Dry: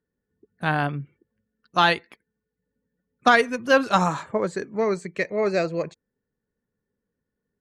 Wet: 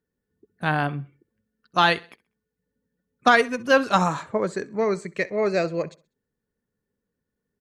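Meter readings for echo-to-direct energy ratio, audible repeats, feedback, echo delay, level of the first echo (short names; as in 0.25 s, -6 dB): -21.0 dB, 2, 36%, 65 ms, -21.5 dB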